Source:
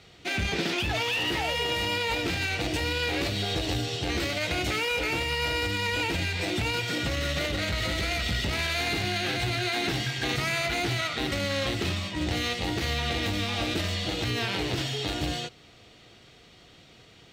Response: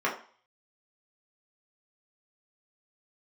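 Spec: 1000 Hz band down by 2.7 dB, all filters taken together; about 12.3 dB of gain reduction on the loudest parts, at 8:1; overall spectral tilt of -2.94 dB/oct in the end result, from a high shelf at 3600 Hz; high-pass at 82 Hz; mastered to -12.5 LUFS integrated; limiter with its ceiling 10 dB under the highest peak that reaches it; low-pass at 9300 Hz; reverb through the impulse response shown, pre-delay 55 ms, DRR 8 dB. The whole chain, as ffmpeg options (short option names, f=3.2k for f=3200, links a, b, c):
-filter_complex "[0:a]highpass=82,lowpass=9.3k,equalizer=f=1k:t=o:g=-4.5,highshelf=f=3.6k:g=7,acompressor=threshold=-37dB:ratio=8,alimiter=level_in=10dB:limit=-24dB:level=0:latency=1,volume=-10dB,asplit=2[a][b];[1:a]atrim=start_sample=2205,adelay=55[c];[b][c]afir=irnorm=-1:irlink=0,volume=-20dB[d];[a][d]amix=inputs=2:normalize=0,volume=29dB"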